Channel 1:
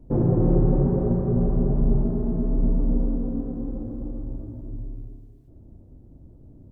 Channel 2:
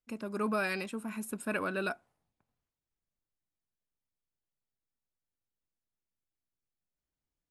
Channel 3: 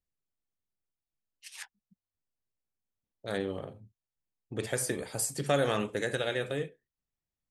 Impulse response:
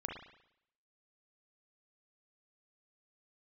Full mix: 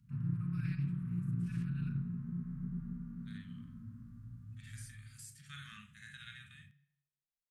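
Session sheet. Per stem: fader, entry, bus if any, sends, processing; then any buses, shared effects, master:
+2.0 dB, 0.00 s, bus A, no send, none
-19.5 dB, 0.00 s, no bus, send -3.5 dB, none
-10.0 dB, 0.00 s, bus A, send -13.5 dB, none
bus A: 0.0 dB, high-pass 180 Hz 12 dB/octave; compression 4:1, threshold -26 dBFS, peak gain reduction 8.5 dB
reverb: on, RT60 0.75 s, pre-delay 35 ms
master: harmonic-percussive split percussive -17 dB; inverse Chebyshev band-stop 310–770 Hz, stop band 50 dB; loudspeaker Doppler distortion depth 0.19 ms

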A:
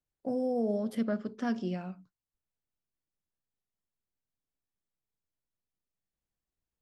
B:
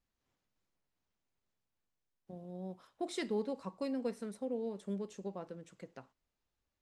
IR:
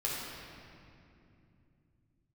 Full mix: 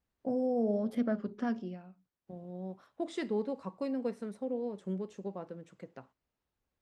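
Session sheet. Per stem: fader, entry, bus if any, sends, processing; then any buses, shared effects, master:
0.0 dB, 0.00 s, no send, auto duck -24 dB, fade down 0.85 s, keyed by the second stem
+2.5 dB, 0.00 s, no send, high-pass 44 Hz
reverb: none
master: treble shelf 3.4 kHz -10 dB; warped record 33 1/3 rpm, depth 100 cents

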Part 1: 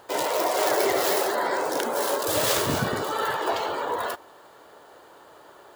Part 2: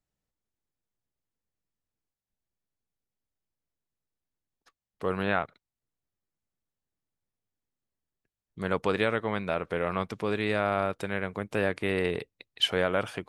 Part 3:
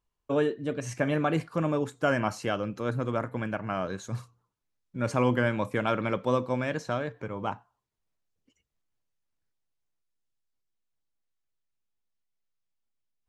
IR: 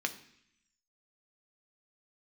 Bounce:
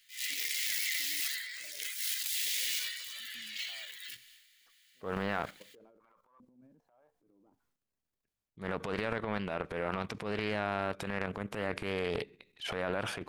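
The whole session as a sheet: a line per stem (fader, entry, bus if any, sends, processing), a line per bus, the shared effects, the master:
+0.5 dB, 0.00 s, send -14.5 dB, Chebyshev high-pass 2 kHz, order 5
0.0 dB, 0.00 s, send -18 dB, peak limiter -18 dBFS, peak gain reduction 7.5 dB
-19.0 dB, 0.00 s, no send, saturation -22 dBFS, distortion -12 dB; step-sequenced band-pass 2.5 Hz 230–2000 Hz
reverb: on, RT60 0.70 s, pre-delay 3 ms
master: level held to a coarse grid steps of 11 dB; transient shaper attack -9 dB, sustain +8 dB; loudspeaker Doppler distortion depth 0.39 ms

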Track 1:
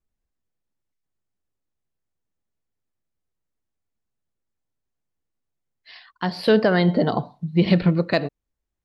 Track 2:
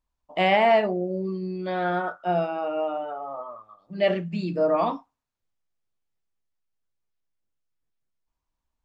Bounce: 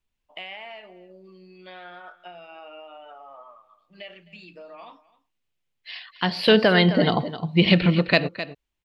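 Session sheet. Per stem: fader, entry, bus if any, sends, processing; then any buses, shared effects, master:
-0.5 dB, 0.00 s, no send, echo send -12.5 dB, none
-8.0 dB, 0.00 s, no send, echo send -19.5 dB, compression 12:1, threshold -29 dBFS, peak gain reduction 14.5 dB; bass shelf 400 Hz -12 dB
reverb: none
echo: delay 260 ms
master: peaking EQ 2.8 kHz +11.5 dB 1.1 oct

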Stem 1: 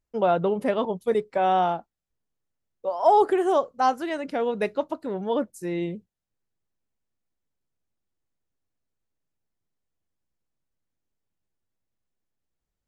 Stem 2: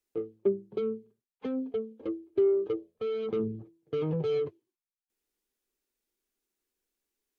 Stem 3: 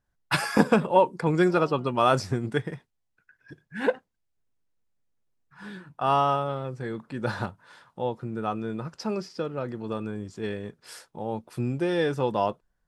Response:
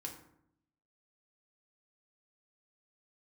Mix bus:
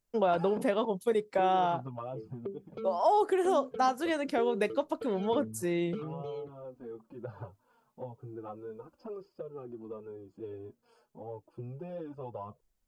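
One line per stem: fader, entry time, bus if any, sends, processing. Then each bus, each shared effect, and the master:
0.0 dB, 0.00 s, no bus, no send, high-pass 110 Hz; treble shelf 5.1 kHz +7 dB; compression 2:1, threshold -28 dBFS, peak gain reduction 8.5 dB
+0.5 dB, 2.00 s, bus A, no send, none
-2.5 dB, 0.00 s, muted 0.69–1.38 s, bus A, no send, boxcar filter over 23 samples; flange 0.32 Hz, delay 1.6 ms, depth 7.2 ms, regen -2%
bus A: 0.0 dB, touch-sensitive flanger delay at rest 5 ms, full sweep at -23 dBFS; compression 6:1, threshold -37 dBFS, peak gain reduction 17 dB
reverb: none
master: none

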